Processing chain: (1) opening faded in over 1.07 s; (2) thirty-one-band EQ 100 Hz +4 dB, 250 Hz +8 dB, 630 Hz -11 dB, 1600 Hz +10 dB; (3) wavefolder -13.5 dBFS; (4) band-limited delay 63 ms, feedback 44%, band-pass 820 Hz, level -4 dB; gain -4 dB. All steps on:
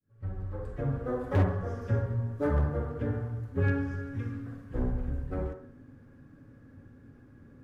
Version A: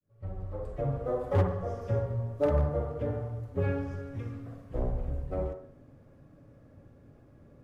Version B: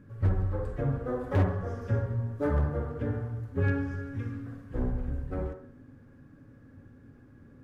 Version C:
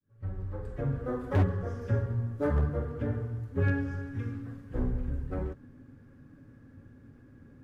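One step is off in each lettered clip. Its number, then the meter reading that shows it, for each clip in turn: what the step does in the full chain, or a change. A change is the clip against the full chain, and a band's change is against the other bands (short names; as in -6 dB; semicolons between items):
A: 2, 2 kHz band -6.0 dB; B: 1, momentary loudness spread change -2 LU; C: 4, echo-to-direct -6.0 dB to none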